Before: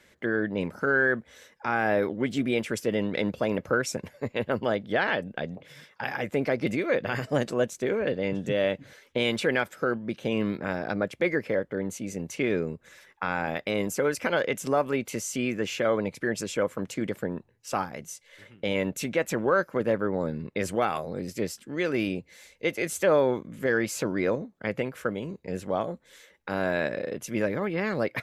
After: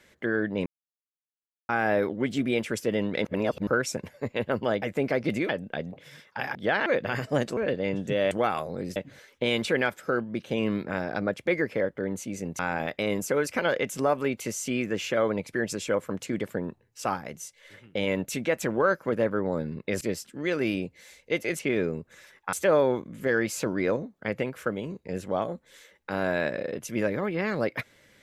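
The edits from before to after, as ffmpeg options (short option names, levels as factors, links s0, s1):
-filter_complex "[0:a]asplit=16[s0][s1][s2][s3][s4][s5][s6][s7][s8][s9][s10][s11][s12][s13][s14][s15];[s0]atrim=end=0.66,asetpts=PTS-STARTPTS,afade=t=out:st=0.656:d=0.004:c=hsin[s16];[s1]atrim=start=0.66:end=1.69,asetpts=PTS-STARTPTS,volume=0[s17];[s2]atrim=start=1.69:end=3.252,asetpts=PTS-STARTPTS,afade=t=in:d=0.004:c=hsin[s18];[s3]atrim=start=3.248:end=3.672,asetpts=PTS-STARTPTS,areverse[s19];[s4]atrim=start=3.668:end=4.822[s20];[s5]atrim=start=6.188:end=6.862[s21];[s6]atrim=start=5.128:end=6.192[s22];[s7]atrim=start=4.818:end=5.132[s23];[s8]atrim=start=6.858:end=7.572[s24];[s9]atrim=start=7.958:end=8.702[s25];[s10]atrim=start=20.688:end=21.342[s26];[s11]atrim=start=8.698:end=12.332[s27];[s12]atrim=start=13.268:end=20.692[s28];[s13]atrim=start=21.338:end=22.922[s29];[s14]atrim=start=12.328:end=13.272[s30];[s15]atrim=start=22.918[s31];[s16][s17][s18]concat=n=3:v=0:a=1[s32];[s32][s19]acrossfade=d=0.004:c1=hsin:c2=hsin[s33];[s33][s20]acrossfade=d=0.004:c1=hsin:c2=hsin[s34];[s34][s21]acrossfade=d=0.004:c1=hsin:c2=hsin[s35];[s35][s22]acrossfade=d=0.004:c1=hsin:c2=hsin[s36];[s36][s23]acrossfade=d=0.004:c1=hsin:c2=hsin[s37];[s37][s24]acrossfade=d=0.004:c1=hsin:c2=hsin[s38];[s38][s25]acrossfade=d=0.004:c1=hsin:c2=hsin[s39];[s39][s26]acrossfade=d=0.004:c1=hsin:c2=hsin[s40];[s40][s27]acrossfade=d=0.004:c1=hsin:c2=hsin[s41];[s41][s28]acrossfade=d=0.004:c1=hsin:c2=hsin[s42];[s42][s29]acrossfade=d=0.004:c1=hsin:c2=hsin[s43];[s43][s30]acrossfade=d=0.004:c1=hsin:c2=hsin[s44];[s44][s31]acrossfade=d=0.004:c1=hsin:c2=hsin"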